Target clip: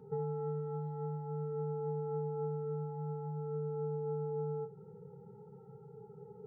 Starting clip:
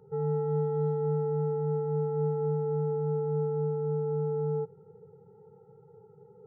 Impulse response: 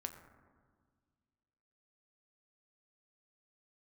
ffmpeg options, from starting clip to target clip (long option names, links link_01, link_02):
-filter_complex "[0:a]equalizer=frequency=125:width_type=o:width=1:gain=3,equalizer=frequency=250:width_type=o:width=1:gain=10,equalizer=frequency=500:width_type=o:width=1:gain=-3,equalizer=frequency=1000:width_type=o:width=1:gain=4,acompressor=threshold=-34dB:ratio=6,flanger=delay=4.7:depth=1.1:regen=-56:speed=0.48:shape=triangular[link_01];[1:a]atrim=start_sample=2205,atrim=end_sample=3528[link_02];[link_01][link_02]afir=irnorm=-1:irlink=0,volume=6dB"